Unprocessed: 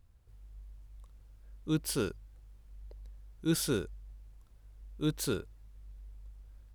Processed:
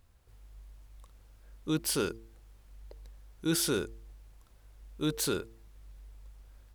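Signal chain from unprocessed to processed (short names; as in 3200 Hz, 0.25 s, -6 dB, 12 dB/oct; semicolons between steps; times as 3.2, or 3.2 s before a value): low shelf 230 Hz -9 dB; de-hum 113.1 Hz, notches 4; in parallel at +2 dB: limiter -30.5 dBFS, peak gain reduction 10 dB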